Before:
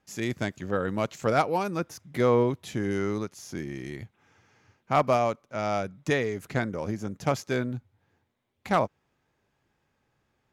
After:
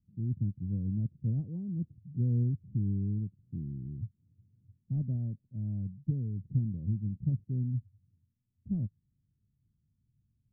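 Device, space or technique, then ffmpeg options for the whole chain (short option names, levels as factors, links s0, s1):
the neighbour's flat through the wall: -af "lowpass=f=190:w=0.5412,lowpass=f=190:w=1.3066,equalizer=f=100:t=o:w=0.63:g=4,volume=1.26"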